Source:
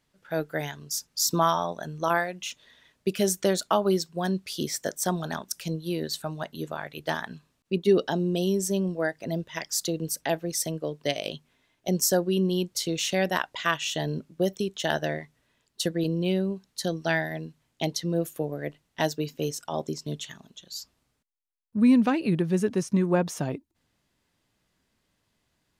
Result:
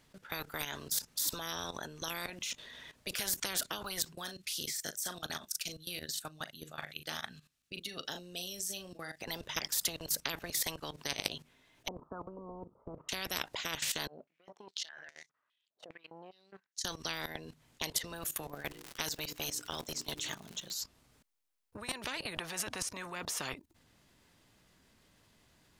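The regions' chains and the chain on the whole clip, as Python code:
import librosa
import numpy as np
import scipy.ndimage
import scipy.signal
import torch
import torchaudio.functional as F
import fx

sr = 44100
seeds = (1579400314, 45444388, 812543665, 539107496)

y = fx.chain(x, sr, fx.tone_stack(knobs='5-5-5'),
    fx.notch(hz=990.0, q=6.2),
    fx.doubler(ms=39.0, db=-10), at=(4.15, 9.21))
y = fx.chain(y, sr, fx.cheby_ripple(hz=1300.0, ripple_db=3),
    fx.low_shelf(hz=240.0, db=-5.5), at=(11.88, 13.09))
y = fx.chain(y, sr, fx.over_compress(threshold_db=-35.0, ratio=-1.0),
    fx.power_curve(exponent=1.4),
    fx.filter_held_bandpass(hz=4.9, low_hz=630.0, high_hz=6200.0), at=(14.07, 16.85))
y = fx.peak_eq(y, sr, hz=250.0, db=-4.0, octaves=0.41, at=(18.42, 20.79), fade=0.02)
y = fx.hum_notches(y, sr, base_hz=60, count=8, at=(18.42, 20.79), fade=0.02)
y = fx.dmg_crackle(y, sr, seeds[0], per_s=160.0, level_db=-44.0, at=(18.42, 20.79), fade=0.02)
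y = fx.level_steps(y, sr, step_db=16)
y = fx.spectral_comp(y, sr, ratio=10.0)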